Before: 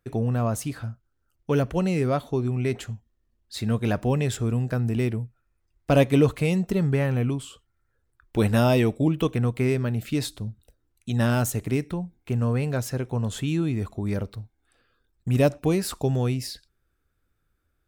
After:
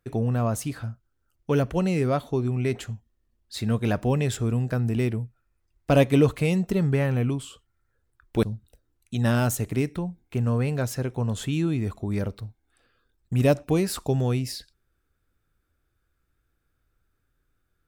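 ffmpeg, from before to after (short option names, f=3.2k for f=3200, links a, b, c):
-filter_complex "[0:a]asplit=2[a][b];[a]atrim=end=8.432[c];[b]atrim=start=10.378[d];[c][d]acrossfade=d=0.004:c1=hsin:c2=hsin"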